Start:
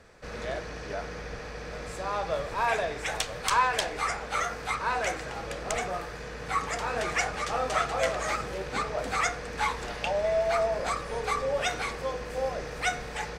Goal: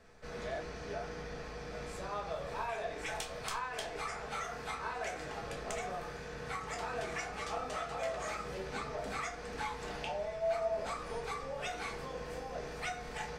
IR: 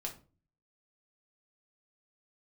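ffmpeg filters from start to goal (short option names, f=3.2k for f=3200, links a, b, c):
-filter_complex "[0:a]acompressor=threshold=-30dB:ratio=6[a];[1:a]atrim=start_sample=2205[b];[a][b]afir=irnorm=-1:irlink=0,volume=-4.5dB"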